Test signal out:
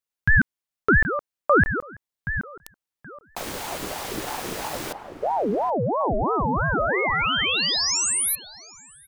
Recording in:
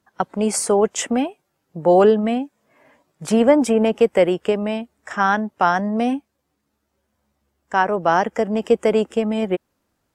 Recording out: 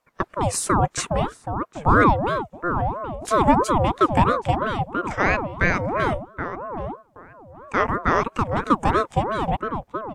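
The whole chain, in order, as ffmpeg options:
ffmpeg -i in.wav -filter_complex "[0:a]asplit=2[link_01][link_02];[link_02]adelay=775,lowpass=frequency=860:poles=1,volume=-6.5dB,asplit=2[link_03][link_04];[link_04]adelay=775,lowpass=frequency=860:poles=1,volume=0.24,asplit=2[link_05][link_06];[link_06]adelay=775,lowpass=frequency=860:poles=1,volume=0.24[link_07];[link_01][link_03][link_05][link_07]amix=inputs=4:normalize=0,aeval=exprs='val(0)*sin(2*PI*590*n/s+590*0.5/3*sin(2*PI*3*n/s))':channel_layout=same" out.wav

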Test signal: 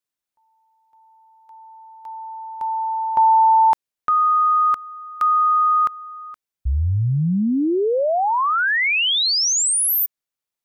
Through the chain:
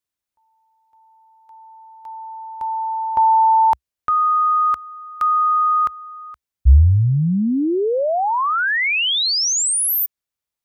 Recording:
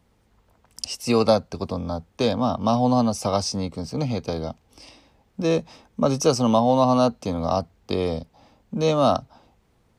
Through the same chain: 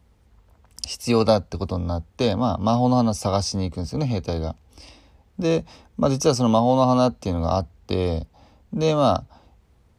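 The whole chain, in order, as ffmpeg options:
ffmpeg -i in.wav -af "equalizer=frequency=64:width=1.3:gain=12" out.wav

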